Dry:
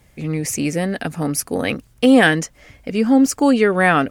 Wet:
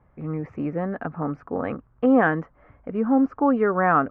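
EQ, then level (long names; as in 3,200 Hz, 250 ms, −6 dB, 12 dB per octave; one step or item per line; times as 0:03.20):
transistor ladder low-pass 1,400 Hz, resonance 50%
+3.0 dB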